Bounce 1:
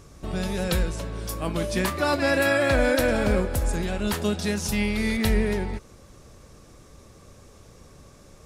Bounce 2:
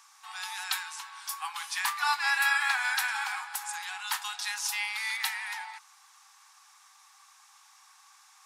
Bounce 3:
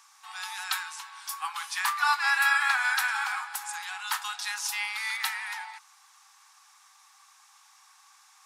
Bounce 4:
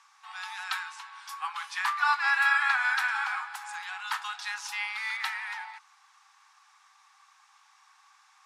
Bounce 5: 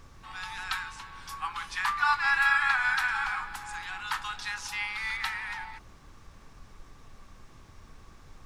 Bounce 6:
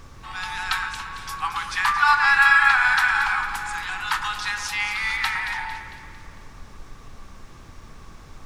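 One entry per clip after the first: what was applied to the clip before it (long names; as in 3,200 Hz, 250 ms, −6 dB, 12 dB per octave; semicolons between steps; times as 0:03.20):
Chebyshev high-pass filter 770 Hz, order 10
dynamic equaliser 1,300 Hz, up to +6 dB, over −44 dBFS, Q 2.5
resonant band-pass 1,400 Hz, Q 0.51
background noise brown −49 dBFS
delay that swaps between a low-pass and a high-pass 113 ms, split 2,100 Hz, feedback 70%, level −7.5 dB; level +7.5 dB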